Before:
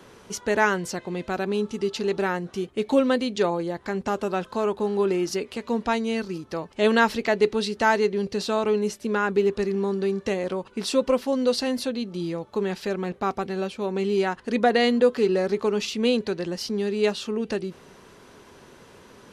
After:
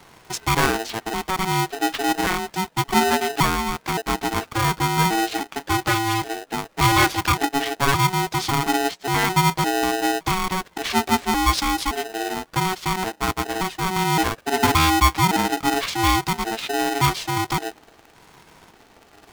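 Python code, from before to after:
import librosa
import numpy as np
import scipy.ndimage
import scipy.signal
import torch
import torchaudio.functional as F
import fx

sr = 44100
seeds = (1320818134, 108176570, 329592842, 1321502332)

y = fx.pitch_trill(x, sr, semitones=-8.0, every_ms=567)
y = fx.leveller(y, sr, passes=1)
y = y * np.sign(np.sin(2.0 * np.pi * 560.0 * np.arange(len(y)) / sr))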